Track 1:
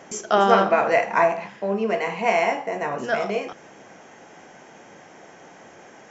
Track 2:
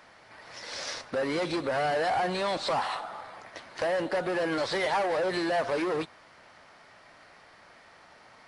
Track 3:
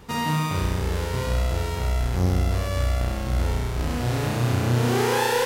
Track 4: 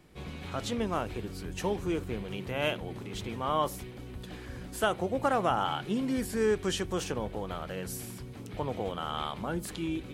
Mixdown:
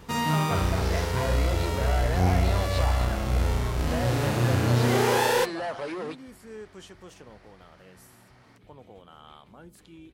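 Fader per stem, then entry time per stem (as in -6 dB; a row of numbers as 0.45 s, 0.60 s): -16.0 dB, -5.0 dB, -1.0 dB, -15.0 dB; 0.00 s, 0.10 s, 0.00 s, 0.10 s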